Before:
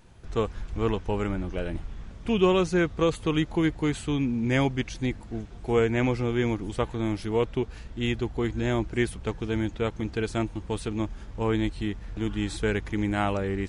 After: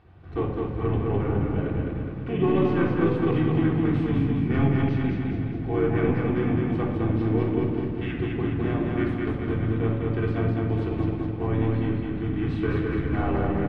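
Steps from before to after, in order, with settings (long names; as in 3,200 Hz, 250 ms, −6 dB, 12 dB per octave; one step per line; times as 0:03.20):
high-pass filter 62 Hz 24 dB per octave
mains-hum notches 60/120/180/240/300/360/420/480/540 Hz
in parallel at −2 dB: downward compressor 6 to 1, threshold −34 dBFS, peak gain reduction 16 dB
on the sum: soft clipping −11 dBFS, distortion −24 dB
pitch-shifted copies added −7 semitones −7 dB, −4 semitones −5 dB
high-frequency loss of the air 400 metres
on a send: repeating echo 208 ms, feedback 55%, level −3 dB
on the sum: rectangular room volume 2,500 cubic metres, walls furnished, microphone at 3.5 metres
level −6.5 dB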